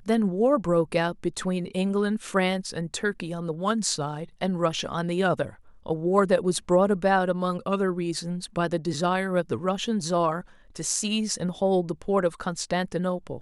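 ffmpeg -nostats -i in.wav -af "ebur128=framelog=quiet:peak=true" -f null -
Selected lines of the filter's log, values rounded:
Integrated loudness:
  I:         -26.0 LUFS
  Threshold: -36.1 LUFS
Loudness range:
  LRA:         3.0 LU
  Threshold: -46.2 LUFS
  LRA low:   -27.6 LUFS
  LRA high:  -24.6 LUFS
True peak:
  Peak:       -7.6 dBFS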